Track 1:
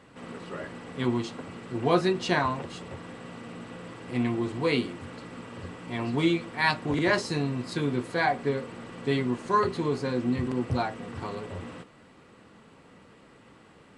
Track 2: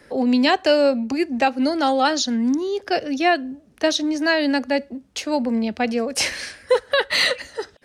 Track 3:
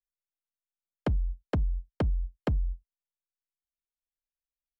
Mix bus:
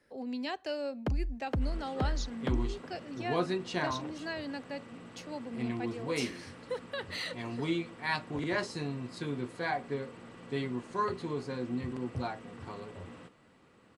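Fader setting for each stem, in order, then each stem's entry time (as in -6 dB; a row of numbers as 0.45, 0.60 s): -8.0, -19.5, -4.0 dB; 1.45, 0.00, 0.00 s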